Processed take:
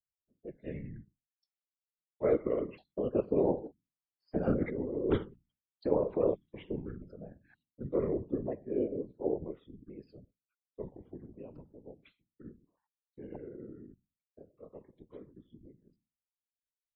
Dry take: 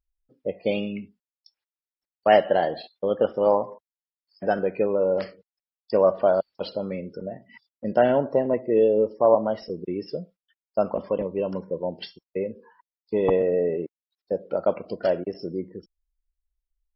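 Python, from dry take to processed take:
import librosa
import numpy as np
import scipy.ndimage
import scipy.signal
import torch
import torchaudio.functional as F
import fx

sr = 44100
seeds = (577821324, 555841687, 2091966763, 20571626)

y = fx.pitch_ramps(x, sr, semitones=-8.5, every_ms=1414)
y = fx.doppler_pass(y, sr, speed_mps=6, closest_m=1.7, pass_at_s=4.85)
y = fx.over_compress(y, sr, threshold_db=-34.0, ratio=-1.0)
y = fx.highpass(y, sr, hz=130.0, slope=6)
y = fx.bass_treble(y, sr, bass_db=11, treble_db=-11)
y = fx.hum_notches(y, sr, base_hz=60, count=3)
y = fx.dynamic_eq(y, sr, hz=410.0, q=1.4, threshold_db=-44.0, ratio=4.0, max_db=5)
y = fx.whisperise(y, sr, seeds[0])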